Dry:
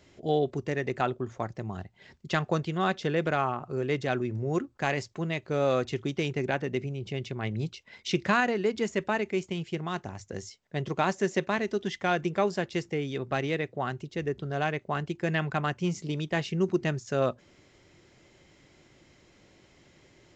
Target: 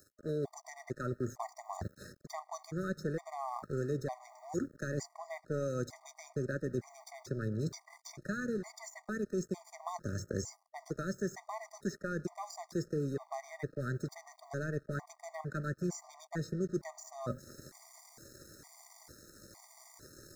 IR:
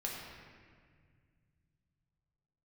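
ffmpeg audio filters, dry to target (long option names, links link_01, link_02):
-filter_complex "[0:a]areverse,acompressor=threshold=-40dB:ratio=6,areverse,aemphasis=mode=production:type=75fm,asplit=2[link_01][link_02];[1:a]atrim=start_sample=2205,adelay=9[link_03];[link_02][link_03]afir=irnorm=-1:irlink=0,volume=-17dB[link_04];[link_01][link_04]amix=inputs=2:normalize=0,aeval=exprs='sgn(val(0))*max(abs(val(0))-0.00158,0)':channel_layout=same,acrossover=split=260|1800[link_05][link_06][link_07];[link_05]acompressor=threshold=-50dB:ratio=4[link_08];[link_06]acompressor=threshold=-50dB:ratio=4[link_09];[link_07]acompressor=threshold=-59dB:ratio=4[link_10];[link_08][link_09][link_10]amix=inputs=3:normalize=0,asuperstop=centerf=2900:order=4:qfactor=0.99,afftfilt=real='re*gt(sin(2*PI*1.1*pts/sr)*(1-2*mod(floor(b*sr/1024/620),2)),0)':imag='im*gt(sin(2*PI*1.1*pts/sr)*(1-2*mod(floor(b*sr/1024/620),2)),0)':win_size=1024:overlap=0.75,volume=14.5dB"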